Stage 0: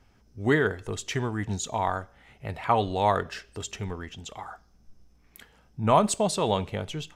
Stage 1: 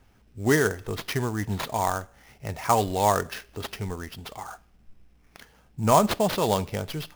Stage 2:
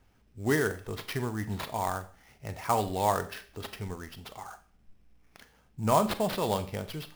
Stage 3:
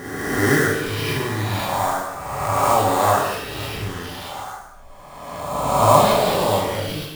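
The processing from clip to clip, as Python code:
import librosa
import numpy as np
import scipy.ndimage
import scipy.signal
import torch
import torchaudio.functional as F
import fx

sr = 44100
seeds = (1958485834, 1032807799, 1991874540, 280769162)

y1 = fx.sample_hold(x, sr, seeds[0], rate_hz=7900.0, jitter_pct=20)
y1 = F.gain(torch.from_numpy(y1), 1.5).numpy()
y2 = fx.dynamic_eq(y1, sr, hz=6400.0, q=3.5, threshold_db=-51.0, ratio=4.0, max_db=-5)
y2 = fx.rev_schroeder(y2, sr, rt60_s=0.38, comb_ms=29, drr_db=11.5)
y2 = F.gain(torch.from_numpy(y2), -5.5).numpy()
y3 = fx.spec_swells(y2, sr, rise_s=1.73)
y3 = fx.rev_gated(y3, sr, seeds[1], gate_ms=320, shape='falling', drr_db=-4.5)
y3 = F.gain(torch.from_numpy(y3), 1.5).numpy()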